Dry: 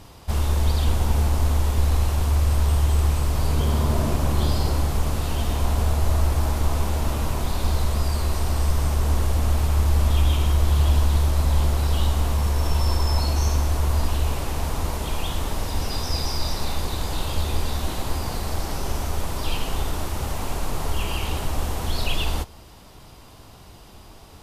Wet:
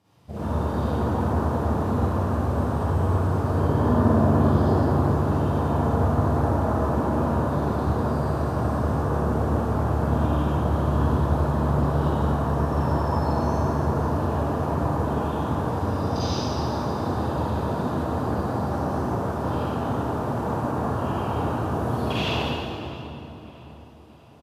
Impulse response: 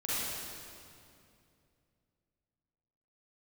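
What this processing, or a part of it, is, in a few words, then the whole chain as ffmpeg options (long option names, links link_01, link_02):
swimming-pool hall: -filter_complex "[0:a]highpass=frequency=100:width=0.5412,highpass=frequency=100:width=1.3066,afwtdn=0.0316,asettb=1/sr,asplit=3[link_01][link_02][link_03];[link_01]atrim=end=21.744[link_04];[link_02]atrim=start=21.74:end=22.14,asetpts=PTS-STARTPTS,afade=type=in:duration=0.004:curve=qsin,afade=type=out:start_time=0.396:duration=0.004:curve=qsin,equalizer=frequency=11000:width=1.5:gain=6[link_05];[link_03]atrim=start=22.136[link_06];[link_04][link_05]acrossfade=duration=0.004:curve1=hsin:curve2=qsin[link_07];[link_07][link_06]acrossfade=duration=0.004:curve1=qsin:curve2=hsin,asplit=2[link_08][link_09];[link_09]adelay=644,lowpass=frequency=3100:poles=1,volume=-17dB,asplit=2[link_10][link_11];[link_11]adelay=644,lowpass=frequency=3100:poles=1,volume=0.54,asplit=2[link_12][link_13];[link_13]adelay=644,lowpass=frequency=3100:poles=1,volume=0.54,asplit=2[link_14][link_15];[link_15]adelay=644,lowpass=frequency=3100:poles=1,volume=0.54,asplit=2[link_16][link_17];[link_17]adelay=644,lowpass=frequency=3100:poles=1,volume=0.54[link_18];[link_08][link_10][link_12][link_14][link_16][link_18]amix=inputs=6:normalize=0[link_19];[1:a]atrim=start_sample=2205[link_20];[link_19][link_20]afir=irnorm=-1:irlink=0,highshelf=frequency=4000:gain=-7"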